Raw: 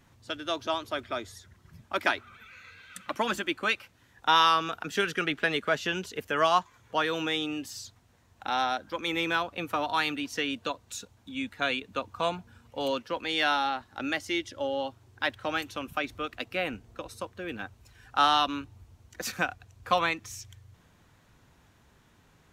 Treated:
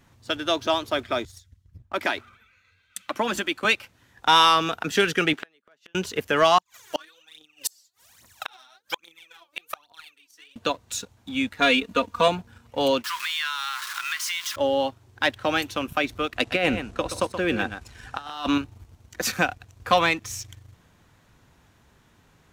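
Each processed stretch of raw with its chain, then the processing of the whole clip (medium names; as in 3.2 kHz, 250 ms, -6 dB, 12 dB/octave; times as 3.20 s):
1.25–3.65 s: peaking EQ 150 Hz -5 dB 0.26 oct + compression 2.5:1, threshold -32 dBFS + three bands expanded up and down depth 100%
5.33–5.95 s: high-pass 240 Hz + inverted gate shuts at -25 dBFS, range -36 dB
6.58–10.56 s: tilt EQ +4 dB/octave + phaser 1.2 Hz, delay 3.6 ms, feedback 79% + inverted gate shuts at -20 dBFS, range -33 dB
11.60–12.28 s: band-stop 770 Hz, Q 5.7 + comb 4.2 ms, depth 92%
13.04–14.56 s: jump at every zero crossing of -33 dBFS + Chebyshev high-pass 1 kHz, order 6 + compression 4:1, threshold -33 dBFS
16.36–18.58 s: low-pass 11 kHz 24 dB/octave + compressor with a negative ratio -31 dBFS, ratio -0.5 + delay 125 ms -10.5 dB
whole clip: dynamic bell 1.3 kHz, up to -4 dB, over -37 dBFS, Q 1.5; waveshaping leveller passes 1; trim +4.5 dB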